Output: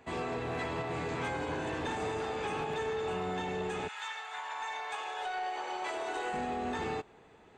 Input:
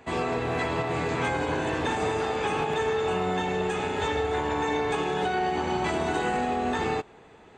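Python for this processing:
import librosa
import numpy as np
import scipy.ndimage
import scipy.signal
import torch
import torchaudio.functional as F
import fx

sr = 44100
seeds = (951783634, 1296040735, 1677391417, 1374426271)

y = fx.highpass(x, sr, hz=fx.line((3.87, 1100.0), (6.32, 350.0)), slope=24, at=(3.87, 6.32), fade=0.02)
y = 10.0 ** (-20.5 / 20.0) * np.tanh(y / 10.0 ** (-20.5 / 20.0))
y = y * librosa.db_to_amplitude(-6.5)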